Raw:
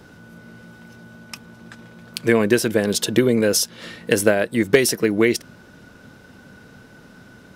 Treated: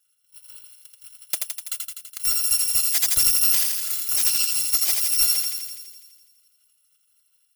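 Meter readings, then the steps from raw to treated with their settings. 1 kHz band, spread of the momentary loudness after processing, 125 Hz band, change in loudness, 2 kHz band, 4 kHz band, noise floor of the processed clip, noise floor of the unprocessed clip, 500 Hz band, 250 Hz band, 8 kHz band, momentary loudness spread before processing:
-10.5 dB, 14 LU, under -20 dB, 0.0 dB, -12.0 dB, +3.0 dB, -67 dBFS, -47 dBFS, under -30 dB, under -30 dB, +6.0 dB, 18 LU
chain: bit-reversed sample order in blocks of 256 samples; high-pass 110 Hz 12 dB/octave; gate -39 dBFS, range -37 dB; in parallel at +0.5 dB: peak limiter -13.5 dBFS, peak gain reduction 11.5 dB; on the sum: tilt shelf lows -9 dB, about 1.3 kHz; compression 2.5:1, threshold -22 dBFS, peak gain reduction 16 dB; reverb removal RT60 0.87 s; level rider gain up to 5 dB; square tremolo 4.1 Hz, depth 60%, duty 55%; hard clipper -15.5 dBFS, distortion -10 dB; on a send: thinning echo 83 ms, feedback 69%, high-pass 590 Hz, level -3 dB

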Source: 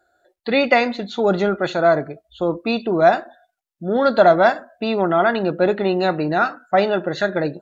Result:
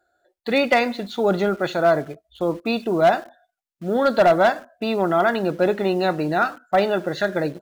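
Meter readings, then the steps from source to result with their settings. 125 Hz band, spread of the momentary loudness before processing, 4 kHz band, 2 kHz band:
-2.0 dB, 9 LU, -1.5 dB, -2.5 dB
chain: in parallel at -9 dB: bit crusher 6-bit; on the sum: hard clipper -5 dBFS, distortion -20 dB; trim -4.5 dB

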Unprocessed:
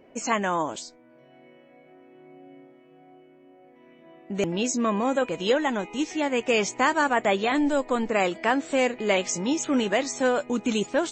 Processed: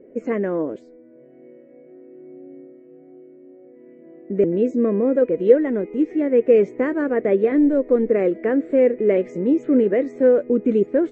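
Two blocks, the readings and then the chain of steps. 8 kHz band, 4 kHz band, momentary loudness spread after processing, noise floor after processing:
under -25 dB, under -20 dB, 7 LU, -48 dBFS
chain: FFT filter 120 Hz 0 dB, 480 Hz +12 dB, 850 Hz -15 dB, 2 kHz -4 dB, 2.9 kHz -20 dB, 5.7 kHz -30 dB

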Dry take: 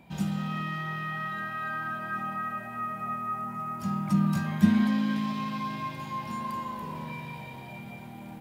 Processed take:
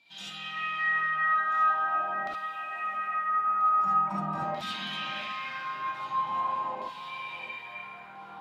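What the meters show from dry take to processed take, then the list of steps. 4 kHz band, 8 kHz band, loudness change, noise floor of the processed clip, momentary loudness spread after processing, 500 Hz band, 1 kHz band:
+6.0 dB, no reading, +1.5 dB, -46 dBFS, 14 LU, +1.5 dB, +6.0 dB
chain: coarse spectral quantiser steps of 15 dB; LFO band-pass saw down 0.44 Hz 670–4000 Hz; on a send: echo whose repeats swap between lows and highs 669 ms, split 1.1 kHz, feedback 52%, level -11 dB; on the sum: gated-style reverb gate 90 ms rising, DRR -3.5 dB; trim +5.5 dB

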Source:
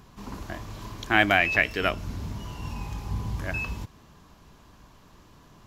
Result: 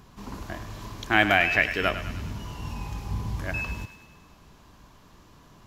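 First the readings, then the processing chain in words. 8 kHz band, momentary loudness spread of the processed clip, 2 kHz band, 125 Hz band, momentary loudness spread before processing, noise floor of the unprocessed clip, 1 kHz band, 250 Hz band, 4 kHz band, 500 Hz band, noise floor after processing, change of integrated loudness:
+0.5 dB, 19 LU, +0.5 dB, 0.0 dB, 19 LU, -55 dBFS, +0.5 dB, 0.0 dB, +0.5 dB, 0.0 dB, -54 dBFS, +0.5 dB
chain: thinning echo 102 ms, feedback 60%, high-pass 670 Hz, level -10 dB

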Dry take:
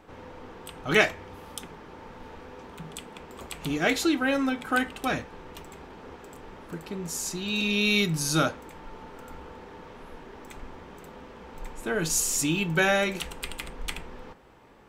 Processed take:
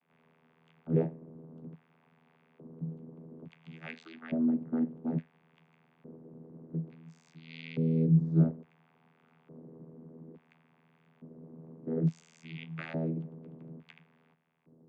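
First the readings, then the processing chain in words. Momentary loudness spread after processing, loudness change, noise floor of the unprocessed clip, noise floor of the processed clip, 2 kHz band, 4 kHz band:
23 LU, -6.0 dB, -47 dBFS, -69 dBFS, -23.0 dB, under -25 dB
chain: peaking EQ 330 Hz +9.5 dB 2.9 oct; LFO band-pass square 0.58 Hz 370–2400 Hz; resonant low shelf 250 Hz +9.5 dB, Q 3; vocoder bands 16, saw 81 Hz; trim -5.5 dB

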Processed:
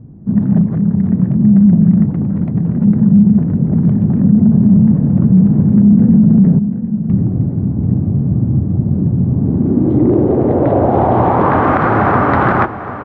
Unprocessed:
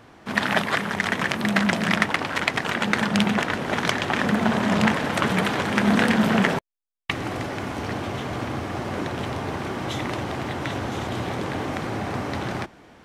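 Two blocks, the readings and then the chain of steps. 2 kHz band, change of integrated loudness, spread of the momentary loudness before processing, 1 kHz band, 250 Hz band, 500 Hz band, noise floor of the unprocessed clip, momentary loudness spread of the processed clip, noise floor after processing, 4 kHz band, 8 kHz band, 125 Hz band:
no reading, +12.0 dB, 9 LU, +9.0 dB, +15.5 dB, +10.0 dB, -50 dBFS, 7 LU, -23 dBFS, under -15 dB, under -25 dB, +18.5 dB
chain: low-pass sweep 170 Hz -> 1.3 kHz, 9.22–11.70 s; on a send: delay 738 ms -14 dB; on the sum: loudness maximiser +16 dB; trim -1 dB

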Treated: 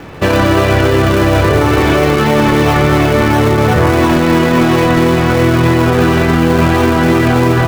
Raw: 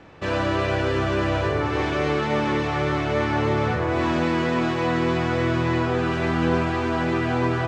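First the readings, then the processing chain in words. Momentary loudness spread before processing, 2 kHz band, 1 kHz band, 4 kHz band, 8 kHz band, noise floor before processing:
1 LU, +11.0 dB, +11.0 dB, +12.0 dB, +18.0 dB, -25 dBFS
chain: in parallel at -7 dB: decimation with a swept rate 36×, swing 100% 2.9 Hz; on the sum: loudness maximiser +16 dB; trim -1 dB

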